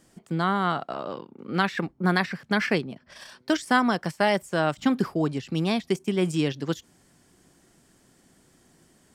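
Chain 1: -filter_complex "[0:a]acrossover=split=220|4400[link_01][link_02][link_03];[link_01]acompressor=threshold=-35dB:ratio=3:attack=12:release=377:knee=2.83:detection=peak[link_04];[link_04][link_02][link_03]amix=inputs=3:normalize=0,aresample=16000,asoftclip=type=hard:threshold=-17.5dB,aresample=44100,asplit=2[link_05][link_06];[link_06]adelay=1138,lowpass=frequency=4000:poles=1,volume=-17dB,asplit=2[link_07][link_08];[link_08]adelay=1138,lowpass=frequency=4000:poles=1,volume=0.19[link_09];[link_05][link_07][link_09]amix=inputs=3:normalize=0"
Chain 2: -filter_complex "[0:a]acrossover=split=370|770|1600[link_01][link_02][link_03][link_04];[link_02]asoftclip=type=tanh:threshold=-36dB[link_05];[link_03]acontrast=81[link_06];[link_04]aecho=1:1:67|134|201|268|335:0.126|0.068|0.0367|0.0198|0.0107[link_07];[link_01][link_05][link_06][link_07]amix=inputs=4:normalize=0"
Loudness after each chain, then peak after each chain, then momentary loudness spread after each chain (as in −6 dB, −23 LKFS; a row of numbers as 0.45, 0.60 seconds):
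−28.0, −25.0 LKFS; −16.0, −5.0 dBFS; 17, 13 LU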